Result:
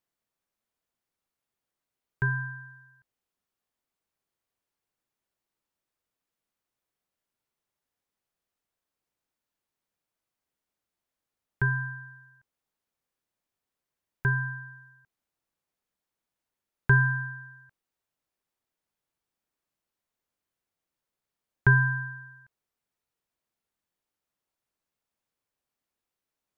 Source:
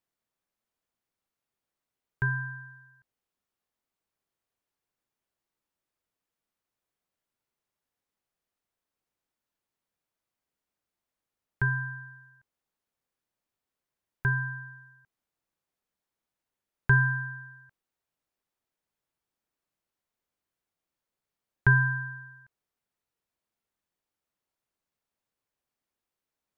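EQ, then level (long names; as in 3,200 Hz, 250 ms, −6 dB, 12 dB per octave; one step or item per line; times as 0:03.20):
dynamic equaliser 350 Hz, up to +5 dB, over −42 dBFS, Q 0.72
0.0 dB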